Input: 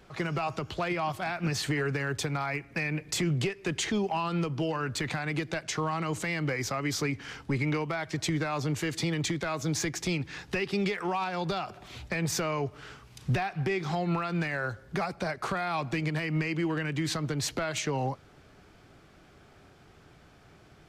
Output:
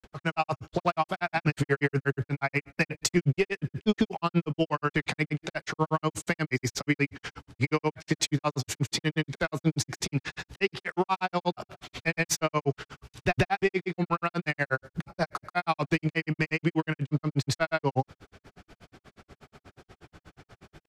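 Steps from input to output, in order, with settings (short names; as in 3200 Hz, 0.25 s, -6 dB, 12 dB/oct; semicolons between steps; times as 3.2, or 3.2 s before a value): grains 80 ms, grains 8.3/s, pitch spread up and down by 0 st; gain +8 dB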